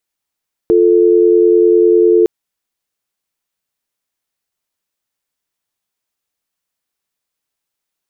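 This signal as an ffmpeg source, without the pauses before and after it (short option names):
-f lavfi -i "aevalsrc='0.355*(sin(2*PI*350*t)+sin(2*PI*440*t))':d=1.56:s=44100"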